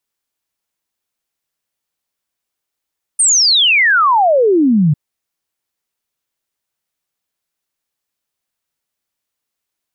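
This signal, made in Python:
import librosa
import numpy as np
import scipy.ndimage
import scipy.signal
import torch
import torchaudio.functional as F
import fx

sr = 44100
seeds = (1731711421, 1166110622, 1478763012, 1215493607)

y = fx.ess(sr, length_s=1.75, from_hz=9200.0, to_hz=140.0, level_db=-8.0)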